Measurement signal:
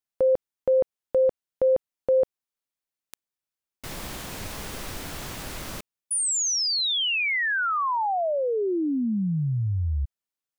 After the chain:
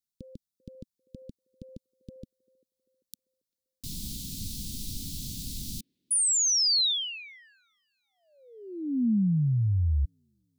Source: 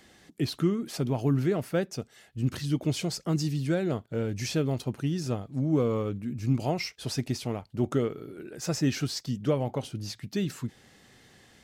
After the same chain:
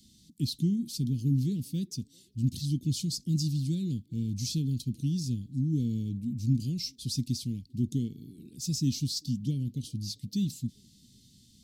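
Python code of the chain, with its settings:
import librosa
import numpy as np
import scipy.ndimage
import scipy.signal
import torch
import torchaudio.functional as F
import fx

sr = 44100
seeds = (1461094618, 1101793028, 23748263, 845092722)

y = scipy.signal.sosfilt(scipy.signal.cheby1(3, 1.0, [240.0, 3900.0], 'bandstop', fs=sr, output='sos'), x)
y = fx.echo_wet_bandpass(y, sr, ms=393, feedback_pct=43, hz=770.0, wet_db=-20.5)
y = y * 10.0 ** (1.5 / 20.0)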